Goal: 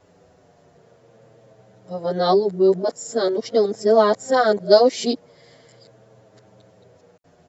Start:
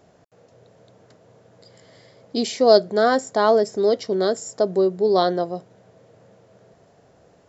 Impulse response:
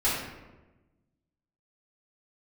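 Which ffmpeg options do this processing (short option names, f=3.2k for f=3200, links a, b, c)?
-filter_complex "[0:a]areverse,asplit=2[a][b];[b]adelay=7.6,afreqshift=-0.44[c];[a][c]amix=inputs=2:normalize=1,volume=3.5dB"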